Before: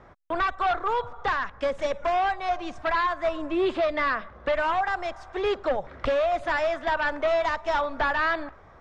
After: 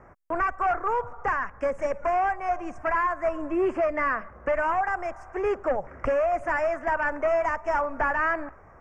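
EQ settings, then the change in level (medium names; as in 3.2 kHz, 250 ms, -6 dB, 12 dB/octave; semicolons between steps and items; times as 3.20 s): Butterworth band-stop 3.8 kHz, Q 0.97; 0.0 dB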